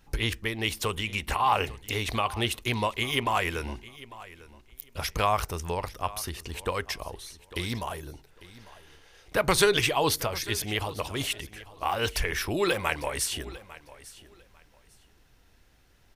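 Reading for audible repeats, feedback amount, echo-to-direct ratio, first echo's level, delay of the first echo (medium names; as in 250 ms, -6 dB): 2, 21%, -18.5 dB, -18.5 dB, 849 ms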